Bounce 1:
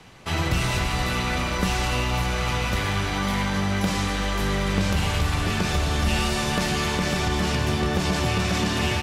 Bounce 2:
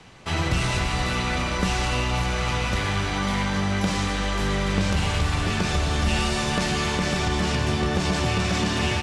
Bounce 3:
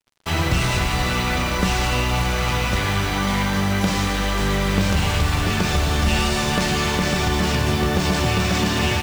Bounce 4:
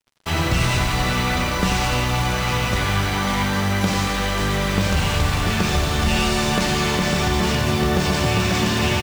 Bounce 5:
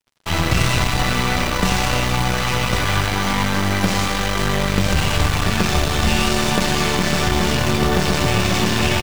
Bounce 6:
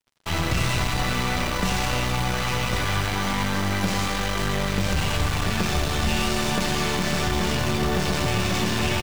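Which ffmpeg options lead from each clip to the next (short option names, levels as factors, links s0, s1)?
-af "lowpass=f=10000:w=0.5412,lowpass=f=10000:w=1.3066"
-af "acrusher=bits=5:mix=0:aa=0.5,volume=1.5"
-af "aecho=1:1:90:0.376"
-af "aeval=exprs='0.473*(cos(1*acos(clip(val(0)/0.473,-1,1)))-cos(1*PI/2))+0.0596*(cos(3*acos(clip(val(0)/0.473,-1,1)))-cos(3*PI/2))+0.0376*(cos(8*acos(clip(val(0)/0.473,-1,1)))-cos(8*PI/2))':c=same,volume=1.58"
-af "asoftclip=type=tanh:threshold=0.282,volume=0.668"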